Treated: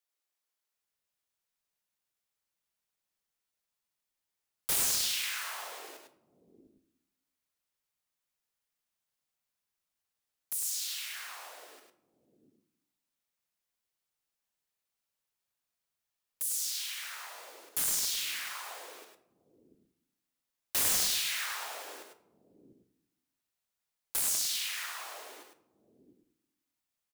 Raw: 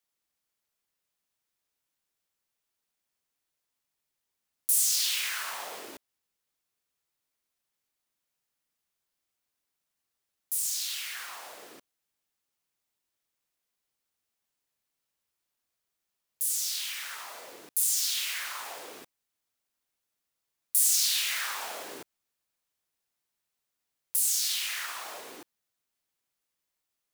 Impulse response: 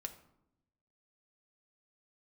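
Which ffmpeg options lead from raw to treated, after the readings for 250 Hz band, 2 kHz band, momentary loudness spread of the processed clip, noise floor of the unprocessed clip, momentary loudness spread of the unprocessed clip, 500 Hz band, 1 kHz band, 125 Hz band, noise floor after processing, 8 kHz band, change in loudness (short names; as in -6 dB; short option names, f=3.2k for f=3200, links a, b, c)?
+1.0 dB, -2.5 dB, 20 LU, -84 dBFS, 21 LU, -1.5 dB, -2.0 dB, n/a, under -85 dBFS, -4.5 dB, -4.0 dB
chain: -filter_complex "[0:a]acrossover=split=300[a][b];[a]adelay=700[c];[c][b]amix=inputs=2:normalize=0,aeval=exprs='(mod(7.5*val(0)+1,2)-1)/7.5':c=same,asplit=2[d][e];[1:a]atrim=start_sample=2205,adelay=102[f];[e][f]afir=irnorm=-1:irlink=0,volume=-2dB[g];[d][g]amix=inputs=2:normalize=0,volume=-4.5dB"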